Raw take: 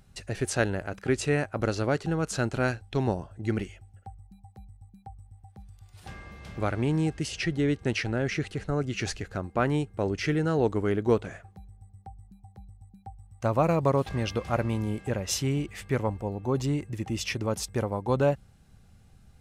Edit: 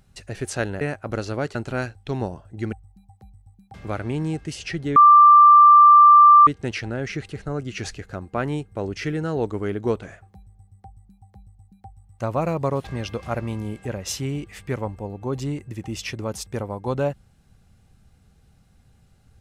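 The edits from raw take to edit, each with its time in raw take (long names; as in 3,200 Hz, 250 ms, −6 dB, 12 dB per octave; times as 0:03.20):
0:00.81–0:01.31: remove
0:02.05–0:02.41: remove
0:03.59–0:04.08: remove
0:05.09–0:06.47: remove
0:07.69: insert tone 1,180 Hz −7 dBFS 1.51 s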